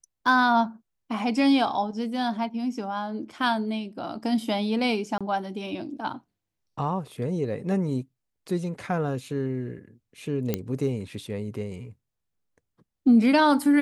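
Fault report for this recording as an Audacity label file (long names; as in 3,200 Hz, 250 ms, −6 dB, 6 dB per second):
5.180000	5.210000	drop-out 26 ms
10.540000	10.540000	click −11 dBFS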